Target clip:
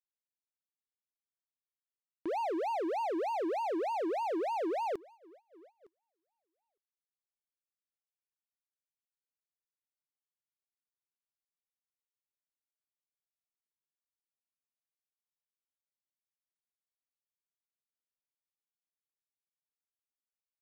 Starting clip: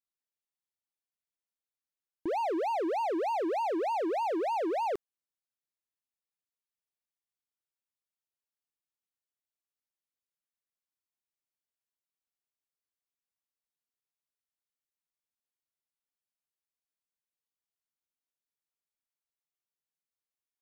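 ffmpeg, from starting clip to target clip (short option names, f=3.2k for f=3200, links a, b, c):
-af "aecho=1:1:910|1820:0.0708|0.0191,agate=range=-20dB:threshold=-52dB:ratio=16:detection=peak,volume=-3dB"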